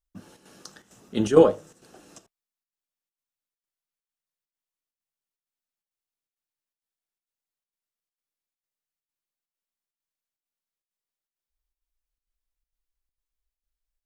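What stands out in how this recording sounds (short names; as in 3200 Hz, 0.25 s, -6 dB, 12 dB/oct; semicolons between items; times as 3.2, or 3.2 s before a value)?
chopped level 2.2 Hz, depth 60%, duty 80%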